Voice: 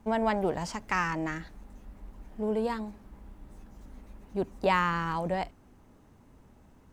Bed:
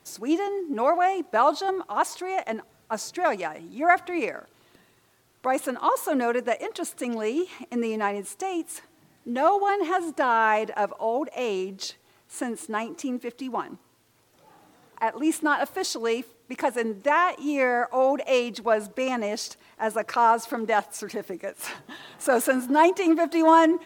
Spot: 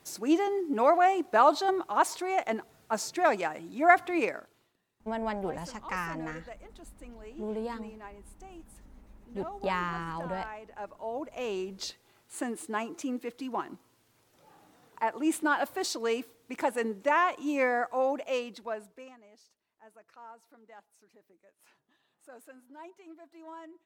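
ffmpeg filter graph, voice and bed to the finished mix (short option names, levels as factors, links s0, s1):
-filter_complex "[0:a]adelay=5000,volume=0.531[s0];[1:a]volume=5.96,afade=t=out:st=4.24:d=0.5:silence=0.105925,afade=t=in:st=10.63:d=1.2:silence=0.149624,afade=t=out:st=17.64:d=1.53:silence=0.0530884[s1];[s0][s1]amix=inputs=2:normalize=0"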